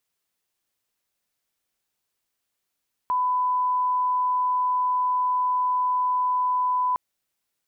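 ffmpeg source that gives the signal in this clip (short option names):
-f lavfi -i "sine=f=1000:d=3.86:r=44100,volume=-1.94dB"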